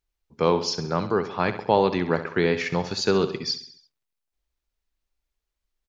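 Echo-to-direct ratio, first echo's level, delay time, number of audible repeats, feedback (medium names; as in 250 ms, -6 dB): -10.5 dB, -12.0 dB, 67 ms, 4, 51%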